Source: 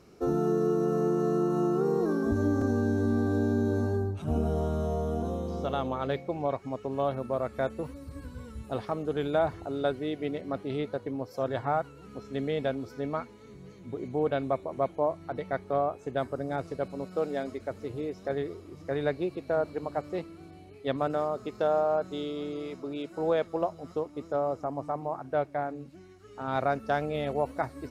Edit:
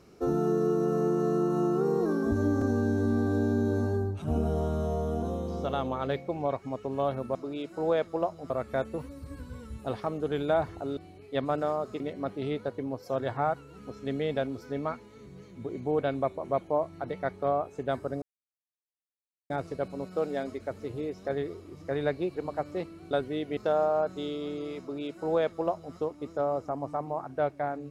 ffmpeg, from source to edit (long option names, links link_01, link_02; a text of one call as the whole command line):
ffmpeg -i in.wav -filter_complex "[0:a]asplit=9[link_01][link_02][link_03][link_04][link_05][link_06][link_07][link_08][link_09];[link_01]atrim=end=7.352[link_10];[link_02]atrim=start=22.748:end=23.902[link_11];[link_03]atrim=start=7.348:end=9.822[link_12];[link_04]atrim=start=20.488:end=21.522[link_13];[link_05]atrim=start=10.278:end=16.5,asetpts=PTS-STARTPTS,afade=type=out:start_time=6.218:duration=0.004:curve=hsin,apad=pad_dur=1.28[link_14];[link_06]atrim=start=16.5:end=19.362,asetpts=PTS-STARTPTS,afade=type=in:duration=0.004:curve=hsin[link_15];[link_07]atrim=start=19.738:end=20.492[link_16];[link_08]atrim=start=9.818:end=10.282[link_17];[link_09]atrim=start=21.518[link_18];[link_10][link_11]acrossfade=duration=0.004:curve1=hsin:curve2=hsin[link_19];[link_19][link_12]acrossfade=duration=0.004:curve1=hsin:curve2=hsin[link_20];[link_20][link_13]acrossfade=duration=0.004:curve1=hsin:curve2=hsin[link_21];[link_14][link_15]concat=n=2:v=0:a=1[link_22];[link_21][link_22]acrossfade=duration=0.004:curve1=hsin:curve2=hsin[link_23];[link_23][link_16]acrossfade=duration=0.004:curve1=hsin:curve2=hsin[link_24];[link_24][link_17]acrossfade=duration=0.004:curve1=hsin:curve2=hsin[link_25];[link_25][link_18]acrossfade=duration=0.004:curve1=hsin:curve2=hsin" out.wav